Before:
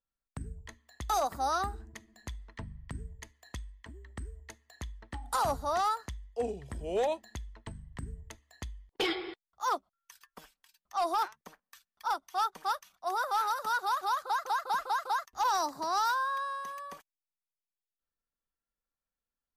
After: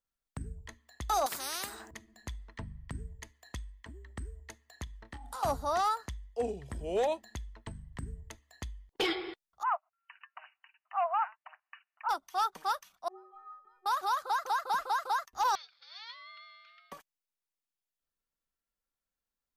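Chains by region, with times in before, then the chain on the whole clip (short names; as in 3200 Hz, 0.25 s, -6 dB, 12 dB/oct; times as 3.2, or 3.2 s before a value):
1.26–1.91 HPF 530 Hz + spectral compressor 4:1
4.84–5.43 compressor 4:1, threshold -41 dBFS + doubler 27 ms -9 dB
9.63–12.09 brick-wall FIR band-pass 610–3000 Hz + mismatched tape noise reduction encoder only
13.08–13.86 Chebyshev low-pass 1000 Hz + notch 820 Hz, Q 6.1 + metallic resonator 370 Hz, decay 0.73 s, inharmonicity 0.03
15.55–16.92 elliptic band-pass 1800–4100 Hz, stop band 50 dB + ring modulator 450 Hz
whole clip: dry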